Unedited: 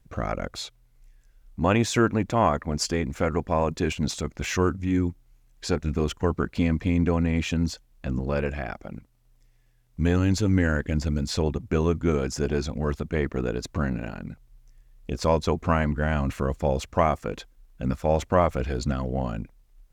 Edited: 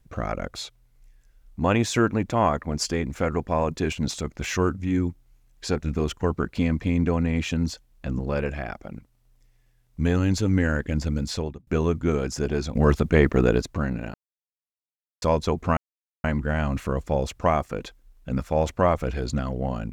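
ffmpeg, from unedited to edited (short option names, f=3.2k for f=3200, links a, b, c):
-filter_complex "[0:a]asplit=7[a][b][c][d][e][f][g];[a]atrim=end=11.67,asetpts=PTS-STARTPTS,afade=t=out:st=11.27:d=0.4[h];[b]atrim=start=11.67:end=12.752,asetpts=PTS-STARTPTS,afade=t=in:d=0.004:c=hsin[i];[c]atrim=start=12.748:end=13.622,asetpts=PTS-STARTPTS,volume=8dB[j];[d]atrim=start=13.618:end=14.14,asetpts=PTS-STARTPTS,afade=t=out:st=0.518:d=0.004:c=hsin[k];[e]atrim=start=14.14:end=15.22,asetpts=PTS-STARTPTS,volume=0[l];[f]atrim=start=15.22:end=15.77,asetpts=PTS-STARTPTS,afade=t=in:d=0.004:c=hsin,afade=t=out:st=0.546:d=0.004:c=hsin,apad=pad_dur=0.47[m];[g]atrim=start=15.77,asetpts=PTS-STARTPTS,afade=t=in:d=0.004:c=hsin[n];[h][i]concat=n=2:v=0:a=1[o];[o][j]acrossfade=d=0.004:c1=hsin:c2=hsin[p];[k][l][m][n]concat=n=4:v=0:a=1[q];[p][q]acrossfade=d=0.004:c1=hsin:c2=hsin"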